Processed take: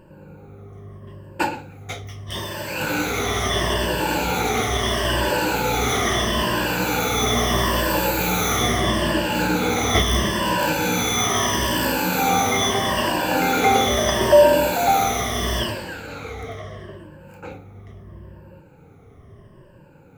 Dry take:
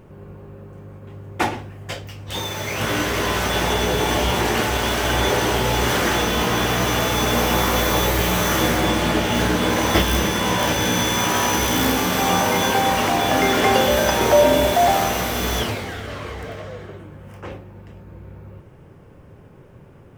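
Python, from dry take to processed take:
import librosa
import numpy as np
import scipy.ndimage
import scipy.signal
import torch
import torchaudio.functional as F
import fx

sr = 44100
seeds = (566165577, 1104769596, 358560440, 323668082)

y = fx.spec_ripple(x, sr, per_octave=1.3, drift_hz=-0.76, depth_db=15)
y = y * 10.0 ** (-4.0 / 20.0)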